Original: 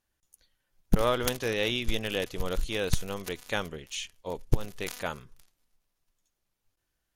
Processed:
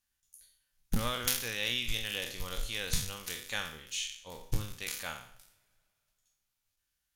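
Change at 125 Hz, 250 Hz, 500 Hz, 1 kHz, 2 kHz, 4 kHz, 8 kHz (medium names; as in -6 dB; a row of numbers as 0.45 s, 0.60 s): -6.5 dB, -9.0 dB, -13.0 dB, -7.0 dB, -2.0 dB, 0.0 dB, +3.0 dB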